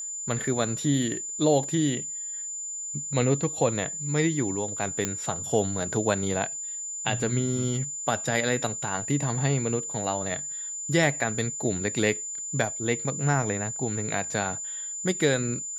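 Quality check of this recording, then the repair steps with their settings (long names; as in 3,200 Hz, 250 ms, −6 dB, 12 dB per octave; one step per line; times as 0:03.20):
whistle 7,100 Hz −32 dBFS
0:05.05: click −11 dBFS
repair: click removal
notch filter 7,100 Hz, Q 30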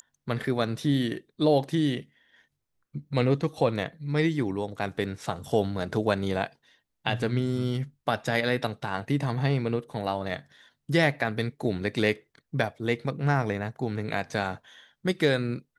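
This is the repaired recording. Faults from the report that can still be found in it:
none of them is left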